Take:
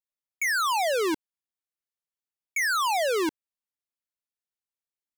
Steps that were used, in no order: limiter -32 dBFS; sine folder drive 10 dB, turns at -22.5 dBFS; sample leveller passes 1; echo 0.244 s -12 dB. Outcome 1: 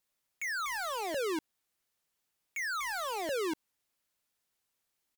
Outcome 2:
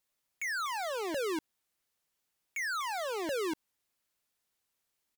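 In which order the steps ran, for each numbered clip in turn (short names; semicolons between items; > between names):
sample leveller > echo > sine folder > limiter; echo > sample leveller > sine folder > limiter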